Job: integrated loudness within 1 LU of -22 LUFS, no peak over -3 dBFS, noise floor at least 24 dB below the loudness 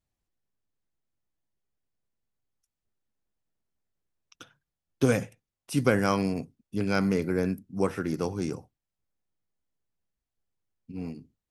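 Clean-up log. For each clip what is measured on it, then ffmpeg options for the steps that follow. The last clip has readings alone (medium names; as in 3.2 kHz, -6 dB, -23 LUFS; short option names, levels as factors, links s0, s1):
loudness -28.5 LUFS; peak level -8.0 dBFS; loudness target -22.0 LUFS
-> -af "volume=2.11,alimiter=limit=0.708:level=0:latency=1"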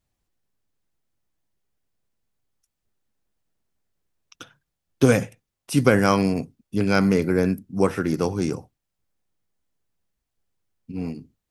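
loudness -22.0 LUFS; peak level -3.0 dBFS; noise floor -82 dBFS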